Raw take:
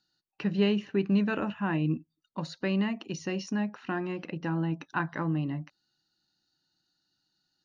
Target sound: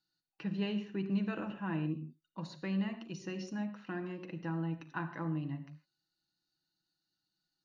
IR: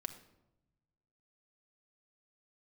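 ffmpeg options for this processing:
-filter_complex "[1:a]atrim=start_sample=2205,afade=t=out:st=0.17:d=0.01,atrim=end_sample=7938,asetrate=33075,aresample=44100[a];[0:a][a]afir=irnorm=-1:irlink=0,volume=-8dB"

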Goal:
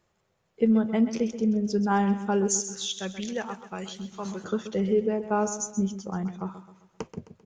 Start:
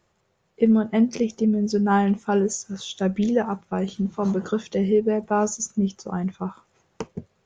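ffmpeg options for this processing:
-filter_complex "[0:a]asettb=1/sr,asplit=3[a][b][c];[a]atrim=end=2.484[d];[b]atrim=start=2.48:end=4.44,asetpts=PTS-STARTPTS,afade=t=in:d=0.004:c=qsin,afade=t=out:st=1.956:d=0.004:c=qsin,tiltshelf=f=1.4k:g=-9[e];[c]atrim=start=4.436[f];[d][e]acrossfade=d=0.004:c1=hsin:c2=qsin[g];[g][f]acrossfade=d=0.004:c1=qsin:c2=hsin,aecho=1:1:131|262|393|524:0.251|0.108|0.0464|0.02,volume=-4dB"

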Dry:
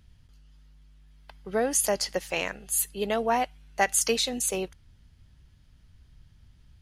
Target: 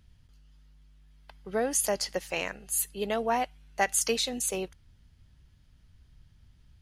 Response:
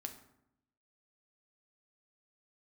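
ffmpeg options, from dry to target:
-filter_complex "[0:a]asettb=1/sr,asplit=3[a][b][c];[a]atrim=end=2.274[d];[b]atrim=start=2.27:end=2.82,asetpts=PTS-STARTPTS,afade=t=in:d=0.004:c=qsin,afade=t=out:st=0.546:d=0.004:c=qsin,bandreject=f=3.4k:w=13[e];[c]atrim=start=2.816[f];[d][e]acrossfade=d=0.004:c1=hsin:c2=qsin[g];[g][f]acrossfade=d=0.004:c1=qsin:c2=hsin,volume=-2.5dB"

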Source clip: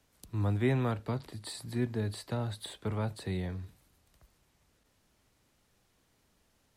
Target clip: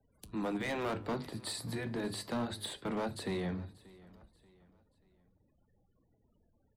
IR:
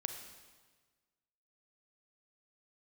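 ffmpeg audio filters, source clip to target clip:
-filter_complex "[0:a]afftfilt=real='re*lt(hypot(re,im),0.158)':imag='im*lt(hypot(re,im),0.158)':win_size=1024:overlap=0.75,bandreject=f=50:t=h:w=6,bandreject=f=100:t=h:w=6,bandreject=f=150:t=h:w=6,bandreject=f=200:t=h:w=6,bandreject=f=250:t=h:w=6,bandreject=f=300:t=h:w=6,bandreject=f=350:t=h:w=6,bandreject=f=400:t=h:w=6,afftfilt=real='re*gte(hypot(re,im),0.000562)':imag='im*gte(hypot(re,im),0.000562)':win_size=1024:overlap=0.75,adynamicequalizer=threshold=0.00178:dfrequency=230:dqfactor=1.1:tfrequency=230:tqfactor=1.1:attack=5:release=100:ratio=0.375:range=2:mode=boostabove:tftype=bell,acrossover=split=110[a][b];[a]alimiter=level_in=26.5dB:limit=-24dB:level=0:latency=1:release=243,volume=-26.5dB[c];[b]asoftclip=type=hard:threshold=-33.5dB[d];[c][d]amix=inputs=2:normalize=0,flanger=delay=8.3:depth=6.3:regen=-77:speed=0.31:shape=triangular,aecho=1:1:584|1168|1752:0.0794|0.0318|0.0127,volume=7dB"

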